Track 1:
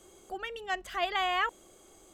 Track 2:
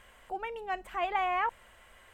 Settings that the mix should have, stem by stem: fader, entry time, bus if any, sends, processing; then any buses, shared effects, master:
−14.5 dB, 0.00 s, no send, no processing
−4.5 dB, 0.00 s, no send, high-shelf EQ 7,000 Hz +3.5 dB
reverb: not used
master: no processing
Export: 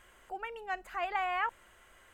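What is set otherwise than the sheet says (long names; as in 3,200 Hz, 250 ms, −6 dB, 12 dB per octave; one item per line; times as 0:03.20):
stem 2: polarity flipped
master: extra parametric band 1,400 Hz +4.5 dB 0.43 octaves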